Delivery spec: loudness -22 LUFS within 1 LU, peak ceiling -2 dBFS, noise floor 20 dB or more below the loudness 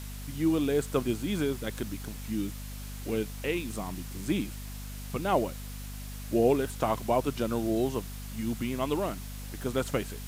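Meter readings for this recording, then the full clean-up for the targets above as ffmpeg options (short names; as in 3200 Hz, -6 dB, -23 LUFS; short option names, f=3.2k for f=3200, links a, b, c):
hum 50 Hz; harmonics up to 250 Hz; hum level -38 dBFS; noise floor -40 dBFS; noise floor target -51 dBFS; loudness -31.0 LUFS; peak -11.5 dBFS; loudness target -22.0 LUFS
-> -af "bandreject=f=50:t=h:w=6,bandreject=f=100:t=h:w=6,bandreject=f=150:t=h:w=6,bandreject=f=200:t=h:w=6,bandreject=f=250:t=h:w=6"
-af "afftdn=nr=11:nf=-40"
-af "volume=9dB"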